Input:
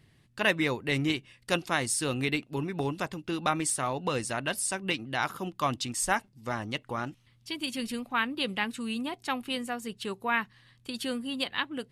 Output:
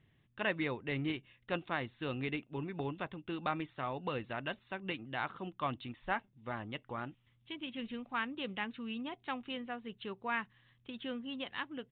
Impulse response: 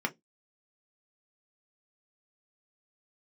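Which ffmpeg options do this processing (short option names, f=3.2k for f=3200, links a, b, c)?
-filter_complex "[0:a]acrossover=split=2400[a][b];[b]alimiter=level_in=4dB:limit=-24dB:level=0:latency=1,volume=-4dB[c];[a][c]amix=inputs=2:normalize=0,aresample=8000,aresample=44100,volume=-7.5dB"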